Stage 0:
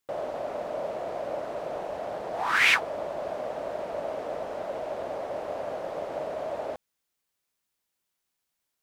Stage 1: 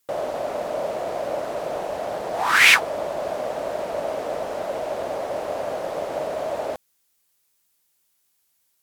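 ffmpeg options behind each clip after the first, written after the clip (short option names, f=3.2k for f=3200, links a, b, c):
-af "aemphasis=mode=production:type=cd,volume=6dB"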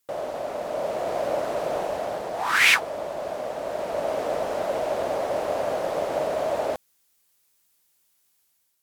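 -af "dynaudnorm=f=600:g=3:m=5.5dB,volume=-4dB"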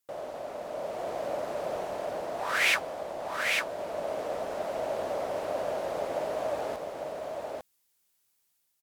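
-af "aecho=1:1:850:0.668,volume=-7.5dB"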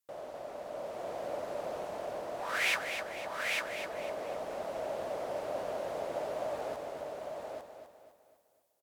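-af "aecho=1:1:253|506|759|1012|1265:0.376|0.165|0.0728|0.032|0.0141,volume=-5.5dB"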